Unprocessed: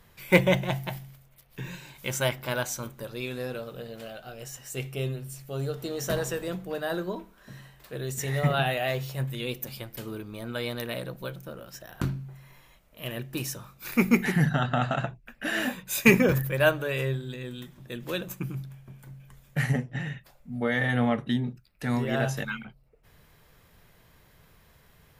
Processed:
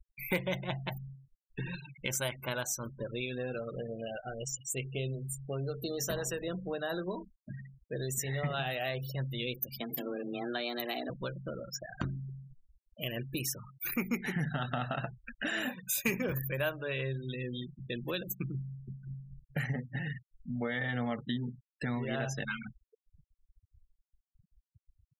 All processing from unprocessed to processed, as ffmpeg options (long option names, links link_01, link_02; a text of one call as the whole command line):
ffmpeg -i in.wav -filter_complex "[0:a]asettb=1/sr,asplit=3[link_01][link_02][link_03];[link_01]atrim=end=9.804[link_04];[link_02]atrim=start=9.8:end=11.1,asetpts=PTS-STARTPTS,afade=type=in:duration=0.004:curve=qsin,afade=type=out:start_time=1.296:duration=0.004:curve=qsin,aeval=exprs='val(0)+0.5*0.01*sgn(val(0))':channel_layout=same,afreqshift=120,equalizer=frequency=550:width=6.3:gain=-3[link_05];[link_03]atrim=start=11.096[link_06];[link_04][link_05]acrossfade=duration=0.004:curve1=hsin:curve2=qsin[link_07];[link_07][link_06]acrossfade=duration=0.004:curve1=qsin:curve2=hsin,afftfilt=real='re*gte(hypot(re,im),0.0141)':imag='im*gte(hypot(re,im),0.0141)':win_size=1024:overlap=0.75,highshelf=frequency=3800:gain=8,acompressor=threshold=-38dB:ratio=3,volume=3dB" out.wav